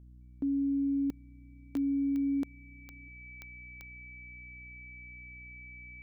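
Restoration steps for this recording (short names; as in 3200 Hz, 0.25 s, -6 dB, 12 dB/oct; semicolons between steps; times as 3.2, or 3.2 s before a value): de-click; de-hum 61.3 Hz, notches 5; notch 2300 Hz, Q 30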